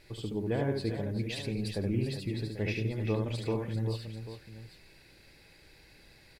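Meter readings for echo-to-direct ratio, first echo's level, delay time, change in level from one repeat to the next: -2.5 dB, -4.0 dB, 72 ms, no regular repeats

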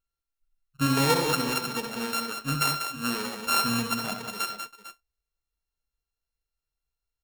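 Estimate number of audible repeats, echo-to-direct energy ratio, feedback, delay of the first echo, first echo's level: 3, -4.5 dB, no regular repeats, 67 ms, -9.0 dB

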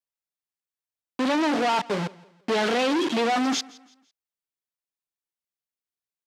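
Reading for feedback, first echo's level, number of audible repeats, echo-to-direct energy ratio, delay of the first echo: 37%, -22.5 dB, 2, -22.0 dB, 167 ms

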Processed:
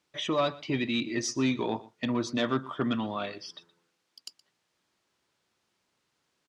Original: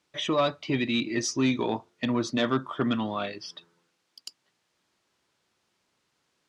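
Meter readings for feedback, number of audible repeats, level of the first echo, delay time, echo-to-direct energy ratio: no regular repeats, 1, -20.5 dB, 120 ms, -20.5 dB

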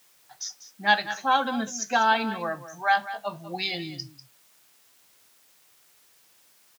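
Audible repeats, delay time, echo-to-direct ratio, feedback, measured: 1, 195 ms, -14.0 dB, no regular repeats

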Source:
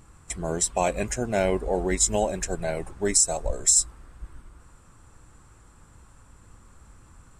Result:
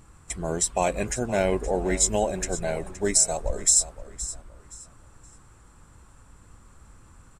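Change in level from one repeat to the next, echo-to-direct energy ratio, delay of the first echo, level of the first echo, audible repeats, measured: -11.0 dB, -14.0 dB, 520 ms, -14.5 dB, 2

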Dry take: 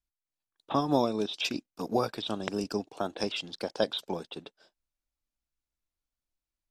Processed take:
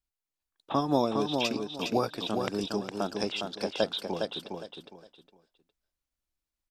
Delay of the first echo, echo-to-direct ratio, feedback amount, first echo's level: 410 ms, -4.5 dB, 25%, -5.0 dB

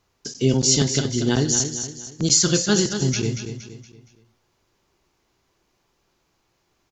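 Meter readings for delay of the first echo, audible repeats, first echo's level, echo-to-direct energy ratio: 234 ms, 4, -8.5 dB, -7.5 dB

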